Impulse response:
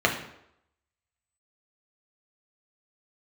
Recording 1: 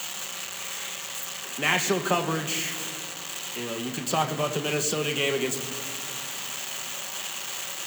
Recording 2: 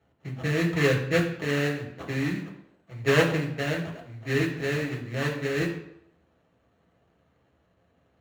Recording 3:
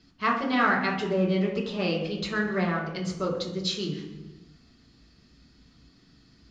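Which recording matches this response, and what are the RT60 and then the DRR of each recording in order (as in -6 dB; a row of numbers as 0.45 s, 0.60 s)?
2; 2.2 s, 0.80 s, 1.1 s; 4.5 dB, 0.0 dB, -4.0 dB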